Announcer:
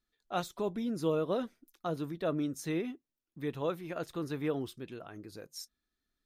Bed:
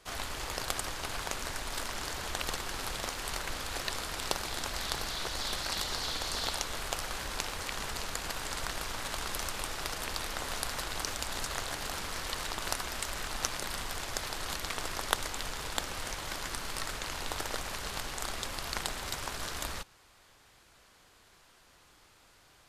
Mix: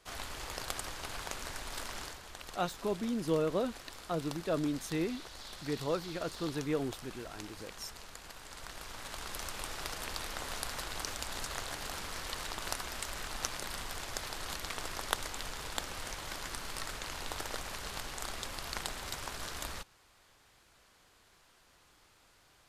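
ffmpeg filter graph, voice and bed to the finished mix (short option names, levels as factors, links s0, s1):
-filter_complex "[0:a]adelay=2250,volume=1[s0];[1:a]volume=1.68,afade=t=out:st=2:d=0.2:silence=0.398107,afade=t=in:st=8.46:d=1.29:silence=0.354813[s1];[s0][s1]amix=inputs=2:normalize=0"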